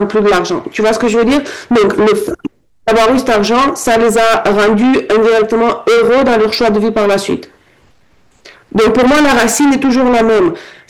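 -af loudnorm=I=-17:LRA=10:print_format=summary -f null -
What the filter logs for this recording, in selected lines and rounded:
Input Integrated:    -10.6 LUFS
Input True Peak:      -5.8 dBTP
Input LRA:             2.3 LU
Input Threshold:     -21.3 LUFS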